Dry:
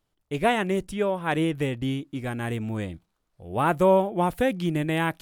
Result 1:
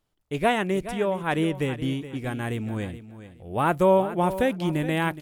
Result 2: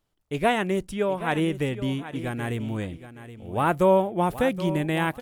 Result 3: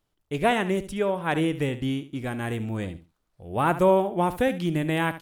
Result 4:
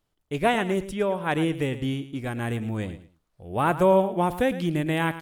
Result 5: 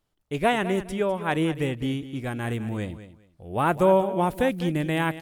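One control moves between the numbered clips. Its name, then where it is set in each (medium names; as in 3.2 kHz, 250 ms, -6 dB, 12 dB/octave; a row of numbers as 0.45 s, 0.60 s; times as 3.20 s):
feedback delay, time: 421 ms, 773 ms, 71 ms, 110 ms, 203 ms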